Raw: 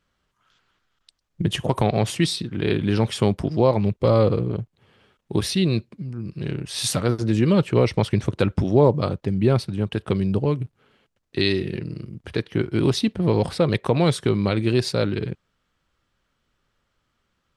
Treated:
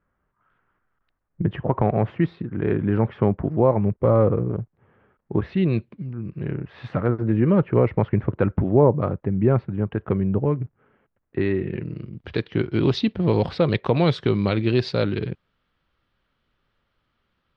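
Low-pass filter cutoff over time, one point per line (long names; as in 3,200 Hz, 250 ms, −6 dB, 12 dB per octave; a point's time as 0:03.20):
low-pass filter 24 dB per octave
0:05.42 1,800 Hz
0:05.91 3,400 Hz
0:06.59 1,900 Hz
0:11.52 1,900 Hz
0:12.26 4,300 Hz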